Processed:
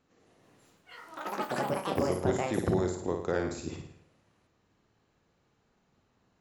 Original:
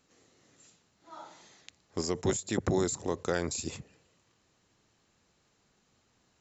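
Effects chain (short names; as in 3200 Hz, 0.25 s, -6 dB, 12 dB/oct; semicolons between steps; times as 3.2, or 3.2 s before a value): LPF 1600 Hz 6 dB/oct; flutter echo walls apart 9.4 m, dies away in 0.6 s; echoes that change speed 0.195 s, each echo +7 st, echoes 3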